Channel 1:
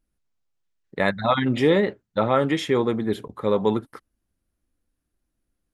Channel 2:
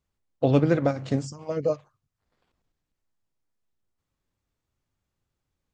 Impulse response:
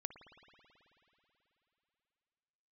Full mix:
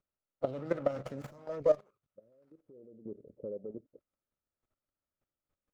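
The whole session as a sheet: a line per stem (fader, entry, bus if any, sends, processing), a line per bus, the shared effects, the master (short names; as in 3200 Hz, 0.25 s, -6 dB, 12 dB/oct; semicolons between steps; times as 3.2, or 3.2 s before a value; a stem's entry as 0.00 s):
-5.5 dB, 0.00 s, no send, low-pass opened by the level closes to 440 Hz, open at -18.5 dBFS; steep low-pass 560 Hz 48 dB/oct; compressor 12:1, threshold -28 dBFS, peak gain reduction 14 dB; auto duck -21 dB, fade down 1.60 s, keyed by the second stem
-1.5 dB, 0.00 s, no send, limiter -17 dBFS, peak gain reduction 10 dB; running maximum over 9 samples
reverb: off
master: low shelf 160 Hz -9 dB; level quantiser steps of 14 dB; small resonant body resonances 590/1300 Hz, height 9 dB, ringing for 20 ms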